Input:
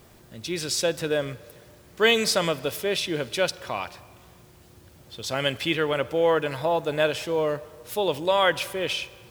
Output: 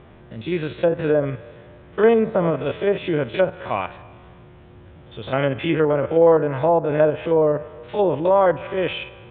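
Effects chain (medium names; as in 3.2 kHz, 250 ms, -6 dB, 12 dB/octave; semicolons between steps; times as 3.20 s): spectrogram pixelated in time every 50 ms; low-pass that closes with the level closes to 990 Hz, closed at -21 dBFS; distance through air 310 m; resampled via 8 kHz; trim +9 dB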